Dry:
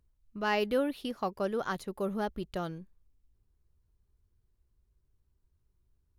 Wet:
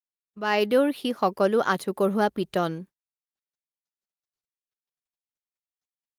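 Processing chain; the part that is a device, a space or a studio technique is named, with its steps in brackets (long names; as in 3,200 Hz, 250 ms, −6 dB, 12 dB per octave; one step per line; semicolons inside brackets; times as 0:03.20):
video call (high-pass filter 180 Hz 12 dB per octave; automatic gain control gain up to 16 dB; noise gate −39 dBFS, range −31 dB; level −4.5 dB; Opus 32 kbit/s 48,000 Hz)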